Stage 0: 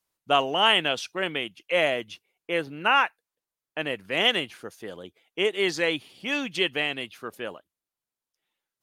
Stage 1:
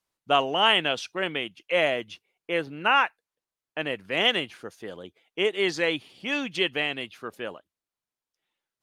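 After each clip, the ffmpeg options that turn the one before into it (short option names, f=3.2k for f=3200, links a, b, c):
-af "highshelf=f=10k:g=-10"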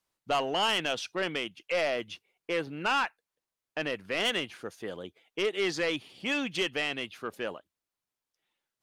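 -filter_complex "[0:a]asplit=2[a][b];[b]alimiter=limit=-18dB:level=0:latency=1:release=320,volume=1dB[c];[a][c]amix=inputs=2:normalize=0,asoftclip=type=tanh:threshold=-15.5dB,volume=-6dB"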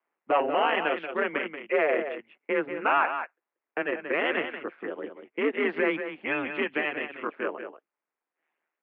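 -af "aecho=1:1:185:0.376,aeval=exprs='val(0)*sin(2*PI*79*n/s)':c=same,highpass=f=360:t=q:w=0.5412,highpass=f=360:t=q:w=1.307,lowpass=f=2.4k:t=q:w=0.5176,lowpass=f=2.4k:t=q:w=0.7071,lowpass=f=2.4k:t=q:w=1.932,afreqshift=-64,volume=8dB"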